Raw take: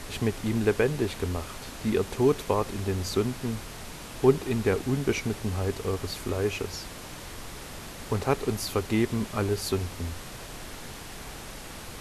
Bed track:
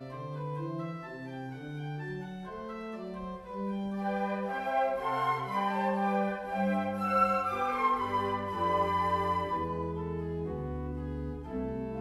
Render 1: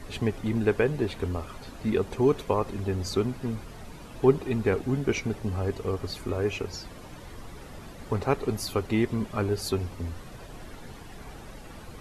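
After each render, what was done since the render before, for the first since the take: denoiser 11 dB, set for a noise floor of -42 dBFS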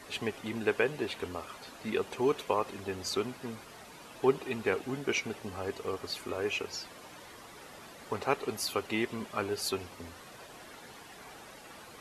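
HPF 660 Hz 6 dB/oct; dynamic EQ 2800 Hz, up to +4 dB, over -54 dBFS, Q 3.7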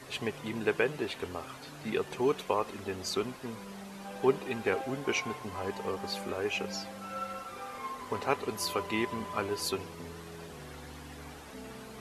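add bed track -12 dB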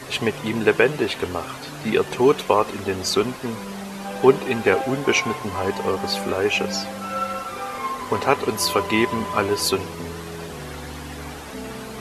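gain +12 dB; limiter -1 dBFS, peak gain reduction 1.5 dB

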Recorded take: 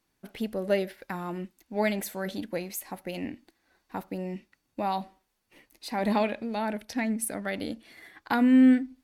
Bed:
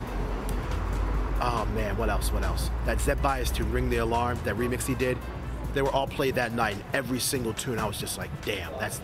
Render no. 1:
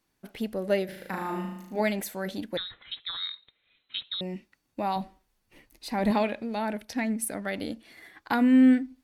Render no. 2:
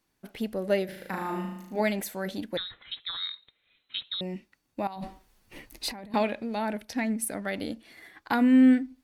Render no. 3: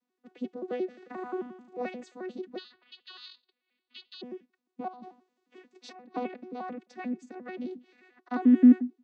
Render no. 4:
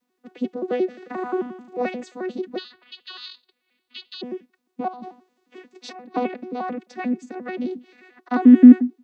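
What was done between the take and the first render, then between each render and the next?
0.85–1.81 flutter echo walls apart 6.4 m, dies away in 0.88 s; 2.57–4.21 inverted band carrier 4000 Hz; 4.96–6.11 low shelf 130 Hz +11.5 dB
4.87–6.14 negative-ratio compressor -39 dBFS
arpeggiated vocoder bare fifth, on B3, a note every 88 ms
gain +9.5 dB; limiter -1 dBFS, peak gain reduction 1 dB

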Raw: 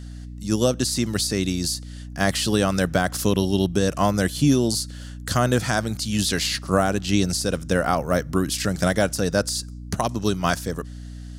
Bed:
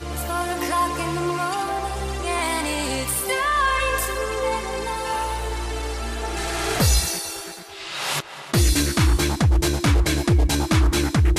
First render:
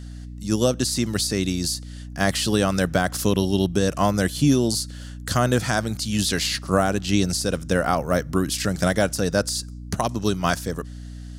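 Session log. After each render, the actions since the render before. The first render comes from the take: nothing audible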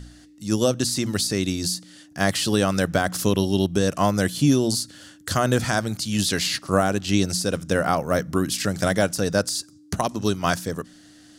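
de-hum 60 Hz, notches 4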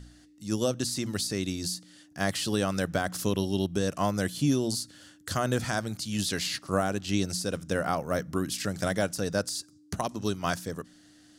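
gain -7 dB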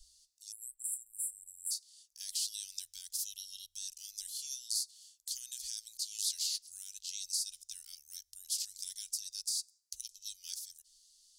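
inverse Chebyshev band-stop 120–1100 Hz, stop band 70 dB; 0.52–1.71 spectral delete 280–7300 Hz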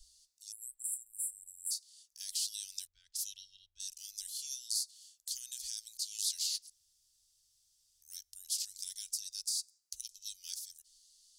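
2.87–3.8 low-pass opened by the level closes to 630 Hz, open at -34.5 dBFS; 6.7–8.02 room tone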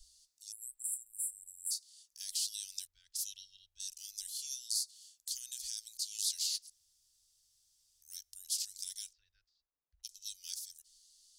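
9.11–10.03 LPF 2000 Hz -> 1100 Hz 24 dB/oct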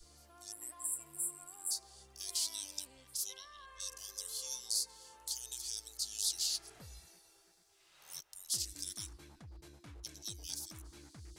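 add bed -35.5 dB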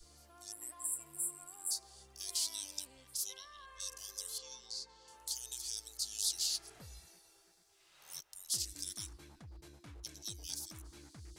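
4.38–5.08 air absorption 150 m

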